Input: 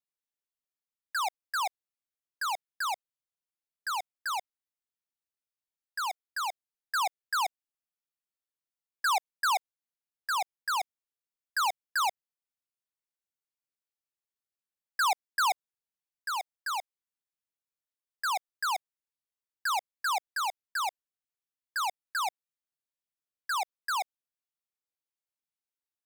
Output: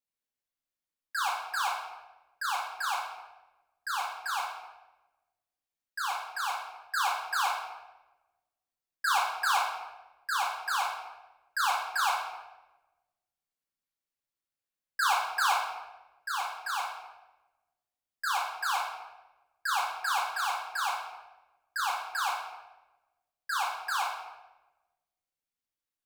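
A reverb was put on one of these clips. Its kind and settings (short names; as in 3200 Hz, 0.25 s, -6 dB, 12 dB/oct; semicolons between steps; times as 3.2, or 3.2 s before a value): shoebox room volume 590 m³, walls mixed, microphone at 2.2 m; gain -4 dB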